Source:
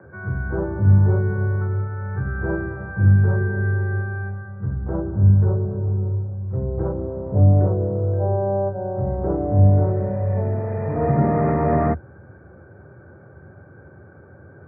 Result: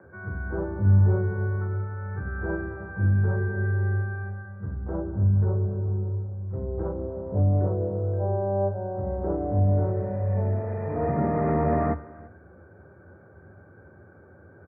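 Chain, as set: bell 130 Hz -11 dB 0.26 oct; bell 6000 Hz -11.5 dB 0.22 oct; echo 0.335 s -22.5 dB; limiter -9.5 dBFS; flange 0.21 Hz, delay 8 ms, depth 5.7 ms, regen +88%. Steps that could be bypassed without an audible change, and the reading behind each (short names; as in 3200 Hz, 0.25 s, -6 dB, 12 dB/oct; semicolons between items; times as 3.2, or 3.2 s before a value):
bell 6000 Hz: input band ends at 810 Hz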